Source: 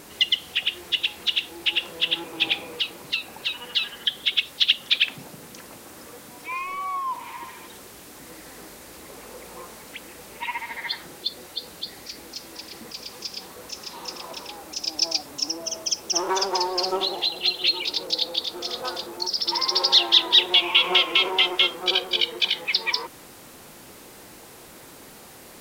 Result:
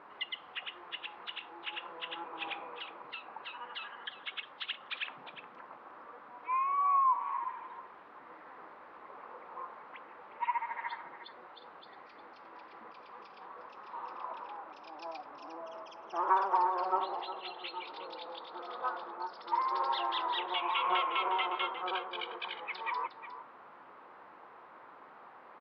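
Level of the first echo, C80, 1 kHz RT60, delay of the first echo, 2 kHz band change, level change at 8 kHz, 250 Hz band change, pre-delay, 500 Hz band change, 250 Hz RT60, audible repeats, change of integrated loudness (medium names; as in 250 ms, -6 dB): -12.0 dB, no reverb, no reverb, 358 ms, -13.0 dB, under -40 dB, -14.0 dB, no reverb, -10.5 dB, no reverb, 1, -13.0 dB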